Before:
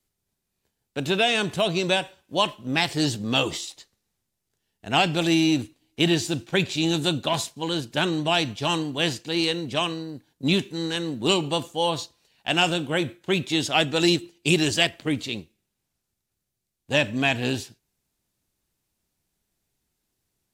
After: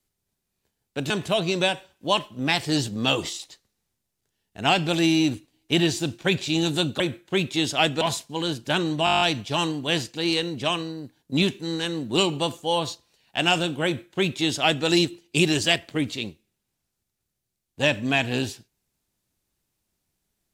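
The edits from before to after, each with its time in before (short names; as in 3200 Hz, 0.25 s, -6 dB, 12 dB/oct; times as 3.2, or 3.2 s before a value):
1.1–1.38 cut
8.32 stutter 0.02 s, 9 plays
12.96–13.97 copy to 7.28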